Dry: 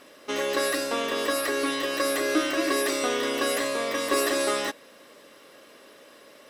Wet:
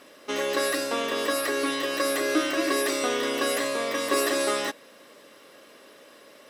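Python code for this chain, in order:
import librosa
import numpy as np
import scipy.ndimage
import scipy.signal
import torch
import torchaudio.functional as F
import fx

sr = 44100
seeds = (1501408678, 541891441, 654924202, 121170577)

y = scipy.signal.sosfilt(scipy.signal.butter(2, 74.0, 'highpass', fs=sr, output='sos'), x)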